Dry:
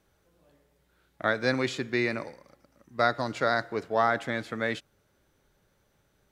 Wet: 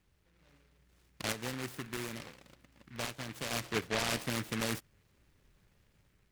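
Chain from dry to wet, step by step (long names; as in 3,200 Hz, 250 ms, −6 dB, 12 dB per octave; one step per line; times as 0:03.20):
low-shelf EQ 220 Hz +9.5 dB
0:01.32–0:03.51: downward compressor 2 to 1, threshold −40 dBFS, peak gain reduction 12.5 dB
brickwall limiter −17.5 dBFS, peak gain reduction 8.5 dB
automatic gain control gain up to 4 dB
regular buffer underruns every 0.11 s, samples 64, zero, from 0:00.98
short delay modulated by noise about 1,700 Hz, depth 0.29 ms
level −8.5 dB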